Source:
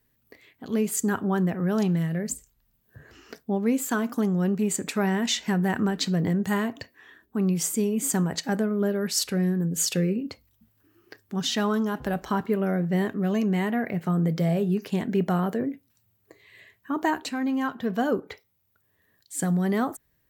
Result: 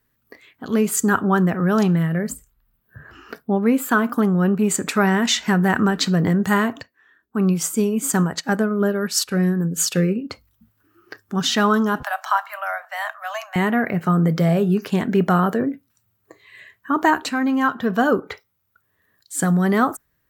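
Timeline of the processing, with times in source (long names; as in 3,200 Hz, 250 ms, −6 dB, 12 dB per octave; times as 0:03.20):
0:01.95–0:04.64: parametric band 6,300 Hz −10 dB 0.89 octaves
0:06.81–0:10.30: expander for the loud parts, over −44 dBFS
0:12.03–0:13.56: Butterworth high-pass 620 Hz 96 dB per octave
whole clip: noise reduction from a noise print of the clip's start 6 dB; parametric band 1,300 Hz +7.5 dB 0.76 octaves; level +6 dB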